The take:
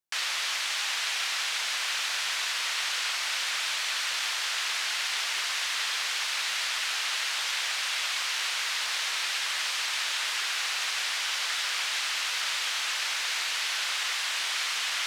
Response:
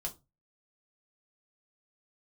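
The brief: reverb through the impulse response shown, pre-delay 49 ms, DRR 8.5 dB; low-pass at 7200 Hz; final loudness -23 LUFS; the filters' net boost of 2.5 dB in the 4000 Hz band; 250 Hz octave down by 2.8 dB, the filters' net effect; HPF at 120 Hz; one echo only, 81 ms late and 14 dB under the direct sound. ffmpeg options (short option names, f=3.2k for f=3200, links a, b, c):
-filter_complex "[0:a]highpass=120,lowpass=7.2k,equalizer=f=250:t=o:g=-4,equalizer=f=4k:t=o:g=3.5,aecho=1:1:81:0.2,asplit=2[a][b];[1:a]atrim=start_sample=2205,adelay=49[c];[b][c]afir=irnorm=-1:irlink=0,volume=-8dB[d];[a][d]amix=inputs=2:normalize=0,volume=2dB"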